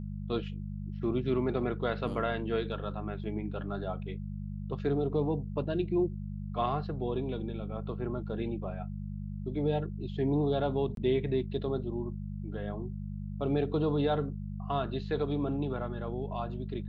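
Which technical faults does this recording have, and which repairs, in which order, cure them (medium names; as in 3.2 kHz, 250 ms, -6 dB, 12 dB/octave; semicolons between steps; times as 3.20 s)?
hum 50 Hz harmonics 4 -38 dBFS
10.95–10.97 s: dropout 22 ms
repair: de-hum 50 Hz, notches 4; interpolate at 10.95 s, 22 ms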